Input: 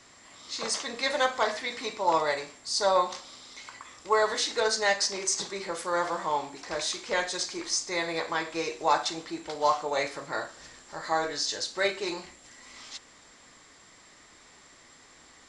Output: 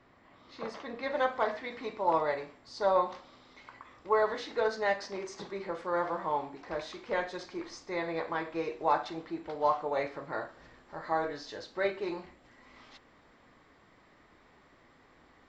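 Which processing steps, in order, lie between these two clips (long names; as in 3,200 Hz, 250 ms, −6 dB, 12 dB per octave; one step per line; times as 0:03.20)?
head-to-tape spacing loss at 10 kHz 45 dB, from 0:01.14 at 10 kHz 36 dB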